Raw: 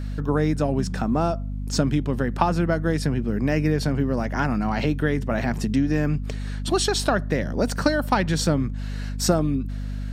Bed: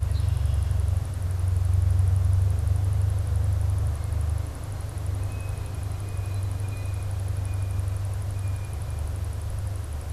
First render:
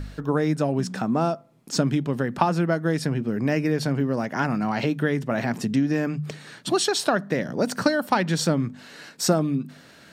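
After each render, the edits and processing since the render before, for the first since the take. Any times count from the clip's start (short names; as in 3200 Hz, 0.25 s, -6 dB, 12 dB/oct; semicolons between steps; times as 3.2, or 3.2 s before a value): de-hum 50 Hz, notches 5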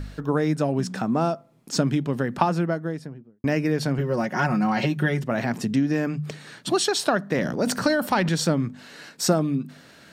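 2.39–3.44 studio fade out; 3.98–5.24 comb 5.5 ms, depth 75%; 7.32–8.29 transient shaper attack -2 dB, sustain +7 dB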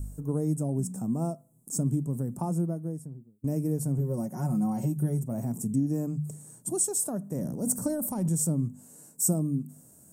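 harmonic-percussive split percussive -6 dB; EQ curve 110 Hz 0 dB, 1000 Hz -13 dB, 1700 Hz -29 dB, 4100 Hz -29 dB, 8000 Hz +12 dB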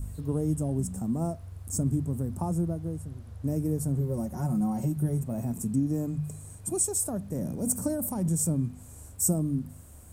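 add bed -18.5 dB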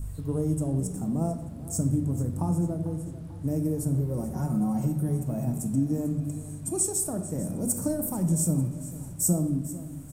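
feedback echo 0.444 s, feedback 53%, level -16 dB; shoebox room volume 380 m³, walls mixed, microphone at 0.58 m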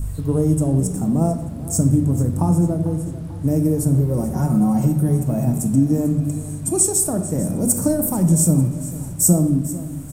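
gain +9.5 dB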